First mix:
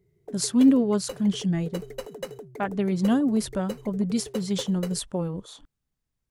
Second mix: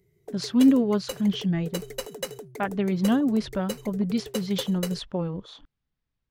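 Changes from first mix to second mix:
speech: add air absorption 270 m; master: add high shelf 2200 Hz +10.5 dB

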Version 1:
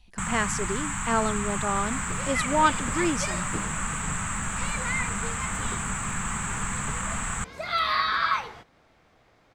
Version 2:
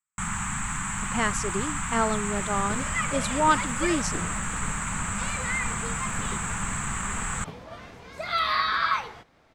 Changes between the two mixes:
speech: entry +0.85 s; second sound: entry +0.60 s

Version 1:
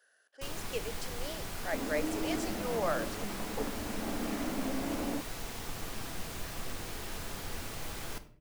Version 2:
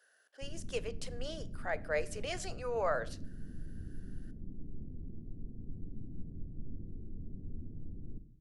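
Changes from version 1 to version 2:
first sound: add inverse Chebyshev low-pass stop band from 1700 Hz, stop band 80 dB; second sound: muted

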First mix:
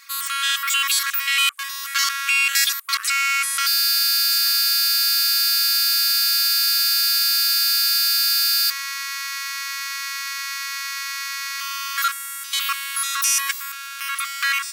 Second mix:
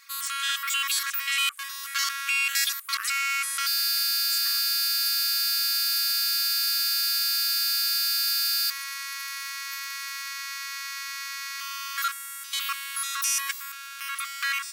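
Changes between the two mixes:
first sound -6.5 dB; second sound +5.0 dB

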